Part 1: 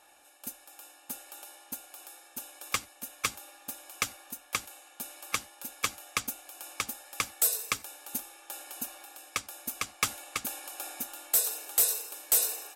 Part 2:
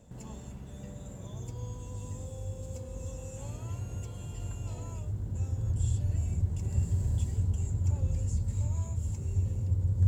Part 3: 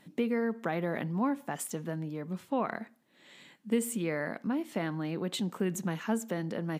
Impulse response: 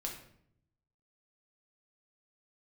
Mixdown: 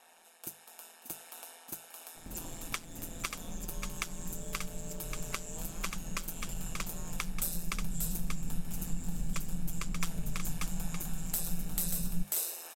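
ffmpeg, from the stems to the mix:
-filter_complex "[0:a]highpass=88,volume=1.26,asplit=2[s0][s1];[s1]volume=0.178[s2];[1:a]highshelf=f=4200:g=12,adelay=2150,volume=1.33[s3];[s0][s3]amix=inputs=2:normalize=0,aeval=exprs='val(0)*sin(2*PI*83*n/s)':c=same,acompressor=threshold=0.0126:ratio=2,volume=1[s4];[s2]aecho=0:1:585:1[s5];[s4][s5]amix=inputs=2:normalize=0,bandreject=f=50:t=h:w=6,bandreject=f=100:t=h:w=6,bandreject=f=150:t=h:w=6,bandreject=f=200:t=h:w=6,asubboost=boost=2:cutoff=60"

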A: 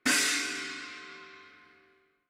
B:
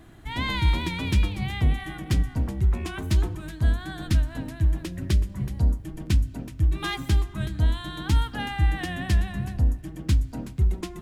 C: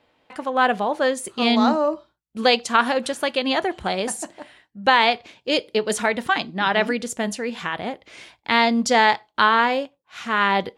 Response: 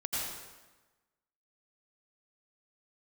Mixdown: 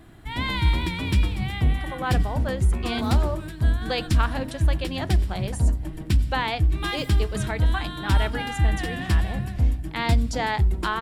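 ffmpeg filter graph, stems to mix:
-filter_complex "[1:a]bandreject=f=6400:w=7.7,volume=1,asplit=2[s0][s1];[s1]volume=0.126[s2];[2:a]adelay=1450,volume=0.316[s3];[3:a]atrim=start_sample=2205[s4];[s2][s4]afir=irnorm=-1:irlink=0[s5];[s0][s3][s5]amix=inputs=3:normalize=0"

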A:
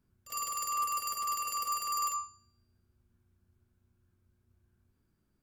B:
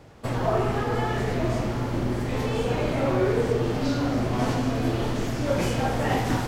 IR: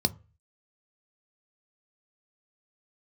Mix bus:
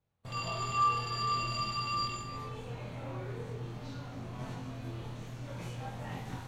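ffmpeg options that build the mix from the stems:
-filter_complex "[0:a]lowpass=f=3600:t=q:w=5.5,volume=1.12,asplit=2[s0][s1];[s1]volume=0.596[s2];[1:a]volume=0.2,asplit=2[s3][s4];[s4]volume=0.0891[s5];[2:a]atrim=start_sample=2205[s6];[s5][s6]afir=irnorm=-1:irlink=0[s7];[s2]aecho=0:1:67|134|201|268|335|402|469|536|603:1|0.58|0.336|0.195|0.113|0.0656|0.0381|0.0221|0.0128[s8];[s0][s3][s7][s8]amix=inputs=4:normalize=0,agate=range=0.141:threshold=0.00316:ratio=16:detection=peak,flanger=delay=22.5:depth=2.3:speed=0.46"

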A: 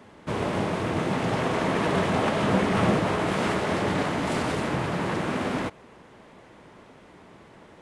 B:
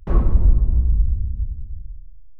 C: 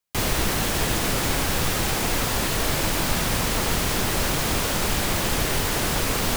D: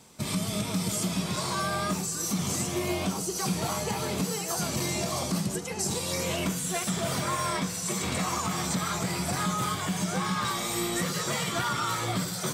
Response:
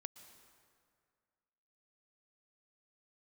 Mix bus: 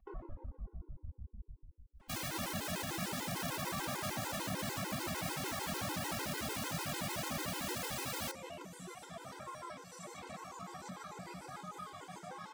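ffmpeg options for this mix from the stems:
-filter_complex "[0:a]adelay=2000,volume=0.335[s0];[1:a]alimiter=limit=0.188:level=0:latency=1:release=38,asplit=2[s1][s2];[s2]adelay=2.2,afreqshift=-1.5[s3];[s1][s3]amix=inputs=2:normalize=1,volume=0.531,asplit=2[s4][s5];[s5]volume=0.299[s6];[2:a]highpass=120,adelay=1950,volume=0.376[s7];[3:a]adelay=2150,volume=0.668,asplit=2[s8][s9];[s9]volume=0.224[s10];[s4][s8]amix=inputs=2:normalize=0,bandpass=f=810:t=q:w=0.75:csg=0,acompressor=threshold=0.00562:ratio=6,volume=1[s11];[s0][s7]amix=inputs=2:normalize=0,equalizer=f=440:t=o:w=0.29:g=-14,alimiter=level_in=1.41:limit=0.0631:level=0:latency=1:release=29,volume=0.708,volume=1[s12];[4:a]atrim=start_sample=2205[s13];[s6][s10]amix=inputs=2:normalize=0[s14];[s14][s13]afir=irnorm=-1:irlink=0[s15];[s11][s12][s15]amix=inputs=3:normalize=0,afftfilt=real='re*gt(sin(2*PI*6.7*pts/sr)*(1-2*mod(floor(b*sr/1024/270),2)),0)':imag='im*gt(sin(2*PI*6.7*pts/sr)*(1-2*mod(floor(b*sr/1024/270),2)),0)':win_size=1024:overlap=0.75"

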